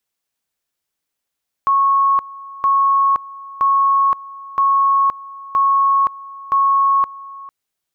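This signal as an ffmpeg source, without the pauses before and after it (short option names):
-f lavfi -i "aevalsrc='pow(10,(-11-20*gte(mod(t,0.97),0.52))/20)*sin(2*PI*1100*t)':d=5.82:s=44100"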